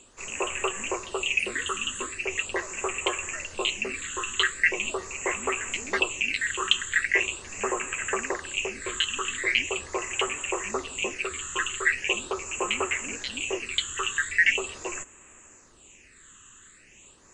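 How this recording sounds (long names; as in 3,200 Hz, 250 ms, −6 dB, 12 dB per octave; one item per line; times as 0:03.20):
phaser sweep stages 8, 0.41 Hz, lowest notch 660–4,600 Hz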